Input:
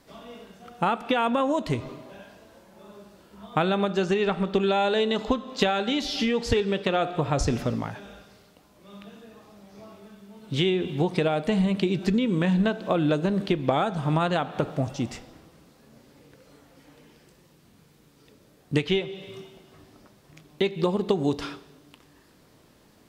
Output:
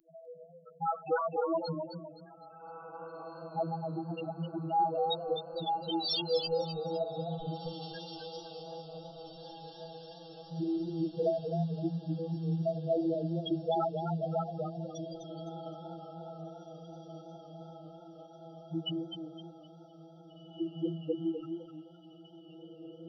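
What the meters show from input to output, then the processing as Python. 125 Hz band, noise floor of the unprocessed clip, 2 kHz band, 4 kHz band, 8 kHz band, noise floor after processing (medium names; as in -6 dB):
-8.5 dB, -58 dBFS, -19.0 dB, -7.5 dB, under -20 dB, -54 dBFS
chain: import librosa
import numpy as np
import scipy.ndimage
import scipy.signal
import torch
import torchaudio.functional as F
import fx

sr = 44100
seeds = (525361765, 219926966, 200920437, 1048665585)

y = fx.tracing_dist(x, sr, depth_ms=0.049)
y = fx.robotise(y, sr, hz=164.0)
y = fx.env_lowpass(y, sr, base_hz=1300.0, full_db=-23.5)
y = fx.high_shelf(y, sr, hz=3200.0, db=9.0)
y = fx.spec_topn(y, sr, count=2)
y = fx.riaa(y, sr, side='recording')
y = fx.echo_diffused(y, sr, ms=1944, feedback_pct=54, wet_db=-12.0)
y = fx.echo_warbled(y, sr, ms=256, feedback_pct=31, rate_hz=2.8, cents=96, wet_db=-7.0)
y = F.gain(torch.from_numpy(y), 2.0).numpy()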